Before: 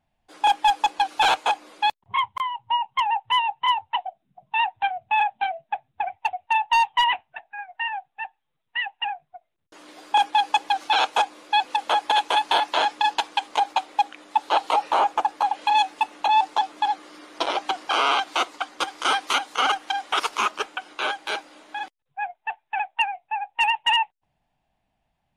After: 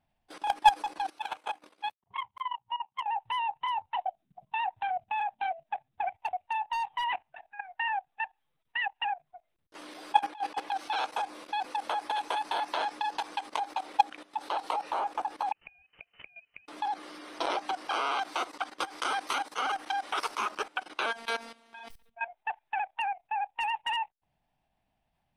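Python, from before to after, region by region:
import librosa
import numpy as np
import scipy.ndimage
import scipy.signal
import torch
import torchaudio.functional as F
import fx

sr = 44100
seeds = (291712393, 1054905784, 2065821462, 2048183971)

y = fx.chain(x, sr, fx.highpass(hz=100.0, slope=6),
    fx.dynamic_eq(hz=4600.0, q=2.0, threshold_db=-42.0, ratio=4.0, max_db=-6),
    fx.level_steps(step_db=16), at=(1.09, 3.08))
y = fx.chain(y, sr, fx.bass_treble(bass_db=-5, treble_db=-6),
    fx.over_compress(threshold_db=-26.0, ratio=-0.5), at=(10.19, 10.72))
y = fx.chain(y, sr, fx.freq_invert(carrier_hz=3300),
    fx.gate_flip(shuts_db=-21.0, range_db=-32), at=(15.52, 16.68))
y = fx.chain(y, sr, fx.robotise(hz=230.0),
    fx.sustainer(db_per_s=110.0), at=(21.06, 22.28))
y = fx.notch(y, sr, hz=6900.0, q=6.0)
y = fx.dynamic_eq(y, sr, hz=3100.0, q=1.8, threshold_db=-37.0, ratio=4.0, max_db=-5)
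y = fx.level_steps(y, sr, step_db=16)
y = F.gain(torch.from_numpy(y), 2.0).numpy()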